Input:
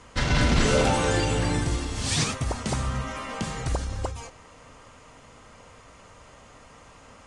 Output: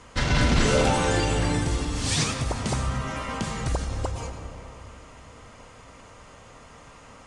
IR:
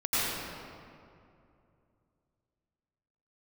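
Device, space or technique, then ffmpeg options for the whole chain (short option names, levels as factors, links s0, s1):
ducked reverb: -filter_complex "[0:a]asplit=3[s0][s1][s2];[1:a]atrim=start_sample=2205[s3];[s1][s3]afir=irnorm=-1:irlink=0[s4];[s2]apad=whole_len=320241[s5];[s4][s5]sidechaincompress=threshold=0.0282:ratio=8:attack=16:release=123,volume=0.141[s6];[s0][s6]amix=inputs=2:normalize=0"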